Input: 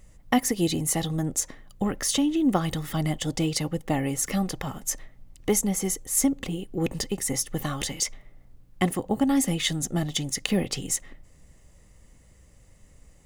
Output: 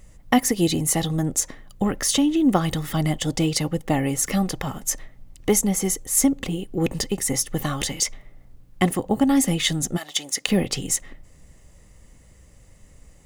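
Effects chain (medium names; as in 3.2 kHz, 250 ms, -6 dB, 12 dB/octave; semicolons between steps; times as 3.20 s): 9.96–10.46 s: high-pass 1.1 kHz -> 280 Hz 12 dB/octave; trim +4 dB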